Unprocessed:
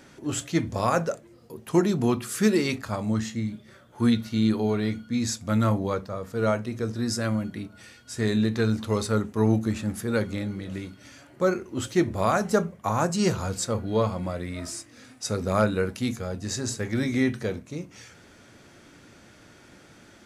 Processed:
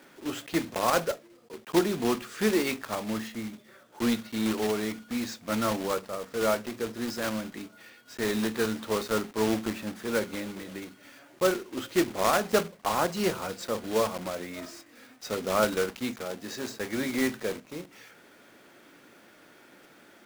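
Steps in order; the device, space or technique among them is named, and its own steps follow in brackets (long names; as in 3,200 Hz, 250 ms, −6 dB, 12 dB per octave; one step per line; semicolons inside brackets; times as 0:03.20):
early digital voice recorder (band-pass filter 270–3,600 Hz; one scale factor per block 3 bits)
0:16.25–0:16.76: high-pass filter 120 Hz
level −1 dB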